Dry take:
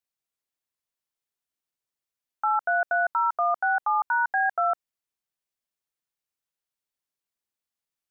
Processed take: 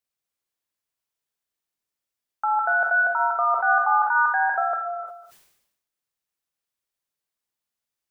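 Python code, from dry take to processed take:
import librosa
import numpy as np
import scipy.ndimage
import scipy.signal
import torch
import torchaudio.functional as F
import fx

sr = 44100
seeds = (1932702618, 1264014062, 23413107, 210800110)

y = fx.doubler(x, sr, ms=48.0, db=-12.5)
y = y + 10.0 ** (-22.0 / 20.0) * np.pad(y, (int(198 * sr / 1000.0), 0))[:len(y)]
y = fx.rev_gated(y, sr, seeds[0], gate_ms=340, shape='flat', drr_db=4.0)
y = fx.sustainer(y, sr, db_per_s=66.0)
y = y * librosa.db_to_amplitude(1.0)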